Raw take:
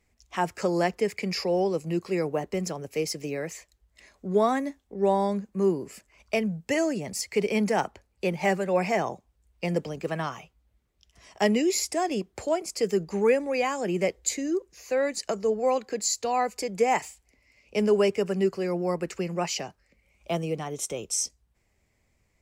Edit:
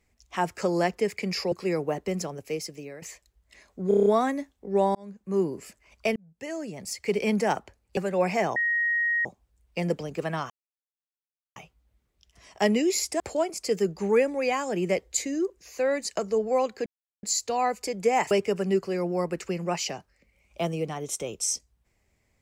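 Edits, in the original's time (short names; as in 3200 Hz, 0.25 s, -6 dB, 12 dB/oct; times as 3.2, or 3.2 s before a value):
1.52–1.98 cut
2.69–3.48 fade out, to -12.5 dB
4.34 stutter 0.03 s, 7 plays
5.23–5.75 fade in
6.44–7.5 fade in
8.25–8.52 cut
9.11 add tone 1880 Hz -22 dBFS 0.69 s
10.36 insert silence 1.06 s
12–12.32 cut
15.98 insert silence 0.37 s
17.06–18.01 cut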